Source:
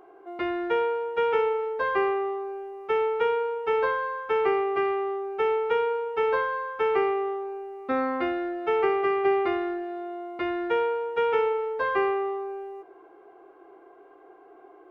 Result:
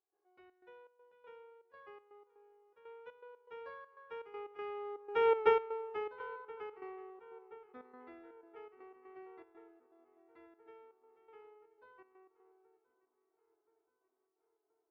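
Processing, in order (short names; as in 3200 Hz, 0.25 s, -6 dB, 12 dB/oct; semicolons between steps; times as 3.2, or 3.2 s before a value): Doppler pass-by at 5.39, 15 m/s, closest 1.5 m; step gate ".xxx.xx.x" 121 bpm -12 dB; on a send: darkening echo 1.026 s, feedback 62%, low-pass 3100 Hz, level -22 dB; on the sum: gain +1 dB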